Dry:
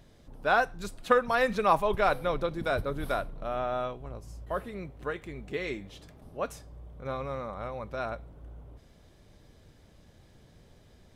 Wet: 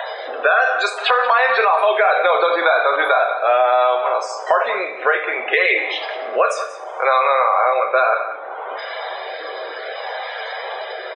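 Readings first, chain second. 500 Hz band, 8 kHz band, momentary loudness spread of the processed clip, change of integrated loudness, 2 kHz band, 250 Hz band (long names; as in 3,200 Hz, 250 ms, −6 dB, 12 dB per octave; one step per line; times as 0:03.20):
+13.5 dB, +12.0 dB, 13 LU, +13.5 dB, +17.0 dB, −1.0 dB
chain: high-pass filter 660 Hz 24 dB per octave
high-shelf EQ 5,700 Hz −11 dB
rotating-speaker cabinet horn 0.65 Hz
downward compressor, threshold −34 dBFS, peak gain reduction 13 dB
spectral peaks only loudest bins 64
slap from a distant wall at 31 metres, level −15 dB
coupled-rooms reverb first 0.42 s, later 1.8 s, from −25 dB, DRR 3 dB
boost into a limiter +33 dB
multiband upward and downward compressor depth 70%
level −5 dB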